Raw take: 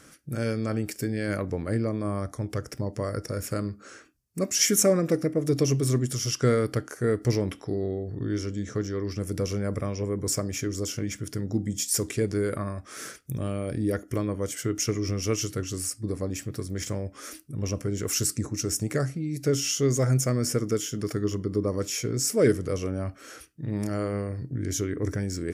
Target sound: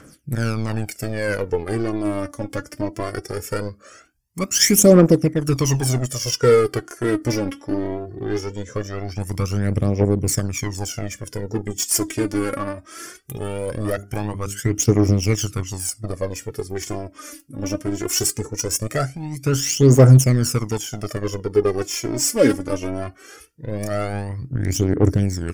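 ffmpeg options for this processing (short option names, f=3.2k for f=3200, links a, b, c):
-filter_complex "[0:a]asplit=2[a][b];[b]acrusher=bits=3:mix=0:aa=0.5,volume=-4.5dB[c];[a][c]amix=inputs=2:normalize=0,asettb=1/sr,asplit=3[d][e][f];[d]atrim=end=13.904[g];[e]atrim=start=13.9:end=14.6,asetpts=PTS-STARTPTS,afade=t=in:d=0.004:c=qsin,afade=t=out:st=0.696:d=0.004:c=qsin,bandreject=f=50:t=h:w=6,bandreject=f=100:t=h:w=6,bandreject=f=150:t=h:w=6,bandreject=f=200:t=h:w=6,bandreject=f=250:t=h:w=6,bandreject=f=300:t=h:w=6,bandreject=f=350:t=h:w=6,bandreject=f=400:t=h:w=6[h];[f]atrim=start=14.596[i];[g][h]acrossfade=d=0.004:c1=hsin:c2=qsin[j];[j][i]acrossfade=d=0.004:c1=qsin:c2=hsin,aphaser=in_gain=1:out_gain=1:delay=3.7:decay=0.69:speed=0.2:type=triangular,bandreject=f=3.9k:w=9.8"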